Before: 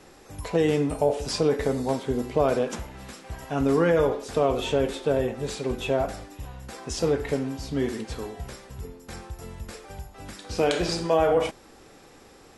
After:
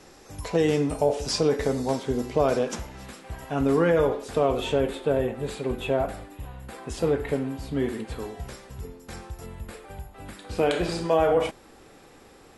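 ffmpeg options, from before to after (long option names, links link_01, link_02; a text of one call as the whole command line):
ffmpeg -i in.wav -af "asetnsamples=nb_out_samples=441:pad=0,asendcmd='3.06 equalizer g -4.5;4.8 equalizer g -11.5;8.2 equalizer g -1.5;9.46 equalizer g -11;10.95 equalizer g -4',equalizer=frequency=5700:width_type=o:width=0.69:gain=4" out.wav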